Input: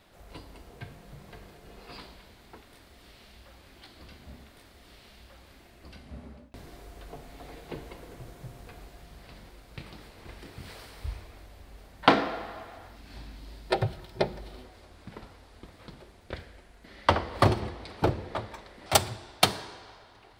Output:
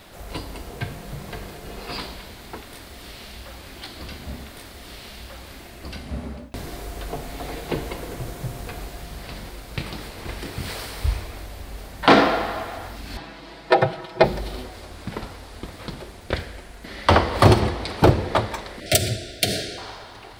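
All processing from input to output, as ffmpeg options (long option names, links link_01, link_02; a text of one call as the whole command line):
ffmpeg -i in.wav -filter_complex "[0:a]asettb=1/sr,asplit=3[link_01][link_02][link_03];[link_01]atrim=end=13.174[link_04];[link_02]atrim=start=13.17:end=14.24,asetpts=PTS-STARTPTS,afade=type=in:duration=0.004:curve=qsin,afade=type=out:start_time=1.066:duration=0.004:curve=qsin,bandpass=frequency=940:width_type=q:width=0.52,aecho=1:1:6.1:0.86,atrim=end_sample=47187[link_05];[link_03]atrim=start=14.236[link_06];[link_04][link_05]acrossfade=duration=0.004:curve1=hsin:curve2=qsin[link_07];[link_07][link_06]acrossfade=duration=0.004:curve1=qsin:curve2=hsin,asettb=1/sr,asplit=3[link_08][link_09][link_10];[link_08]atrim=end=18.804[link_11];[link_09]atrim=start=18.8:end=19.78,asetpts=PTS-STARTPTS,afade=type=in:duration=0.004:curve=qsin,afade=type=out:start_time=0.976:duration=0.004:curve=qsin,equalizer=frequency=1500:width=3.1:gain=-6,acompressor=threshold=-26dB:ratio=3:attack=3.2:release=140:knee=1:detection=peak,asuperstop=centerf=1000:order=20:qfactor=1.5[link_12];[link_10]atrim=start=19.776[link_13];[link_11][link_12]acrossfade=duration=0.004:curve1=hsin:curve2=qsin[link_14];[link_14][link_13]acrossfade=duration=0.004:curve1=qsin:curve2=hsin,highshelf=frequency=5700:gain=4.5,alimiter=level_in=14dB:limit=-1dB:release=50:level=0:latency=1,volume=-1dB" out.wav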